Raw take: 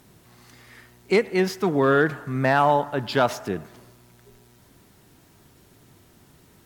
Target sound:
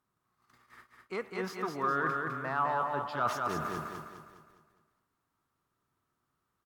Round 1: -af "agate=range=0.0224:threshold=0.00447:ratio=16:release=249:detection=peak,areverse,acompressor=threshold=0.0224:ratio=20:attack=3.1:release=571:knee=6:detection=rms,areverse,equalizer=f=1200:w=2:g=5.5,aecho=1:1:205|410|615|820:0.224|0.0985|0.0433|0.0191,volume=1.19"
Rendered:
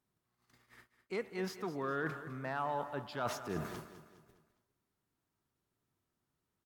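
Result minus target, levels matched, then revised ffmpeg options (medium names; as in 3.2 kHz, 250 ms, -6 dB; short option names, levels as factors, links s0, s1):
echo-to-direct -9.5 dB; 1 kHz band -3.0 dB
-af "agate=range=0.0224:threshold=0.00447:ratio=16:release=249:detection=peak,areverse,acompressor=threshold=0.0224:ratio=20:attack=3.1:release=571:knee=6:detection=rms,areverse,equalizer=f=1200:w=2:g=17,aecho=1:1:205|410|615|820|1025|1230:0.668|0.294|0.129|0.0569|0.0251|0.011,volume=1.19"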